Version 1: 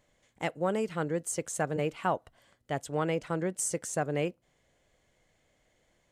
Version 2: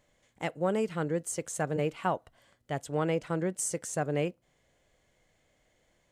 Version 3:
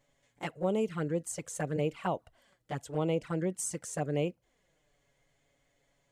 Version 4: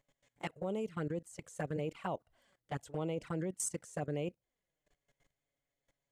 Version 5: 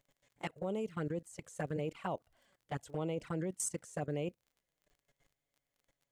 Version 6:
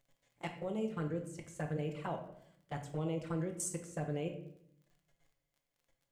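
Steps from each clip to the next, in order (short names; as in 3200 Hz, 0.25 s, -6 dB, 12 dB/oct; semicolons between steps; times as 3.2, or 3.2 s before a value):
harmonic-percussive split percussive -3 dB; gain +1.5 dB
envelope flanger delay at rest 7.4 ms, full sweep at -25.5 dBFS
level quantiser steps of 18 dB
crackle 35/s -58 dBFS
reverb RT60 0.70 s, pre-delay 6 ms, DRR 3.5 dB; gain -2.5 dB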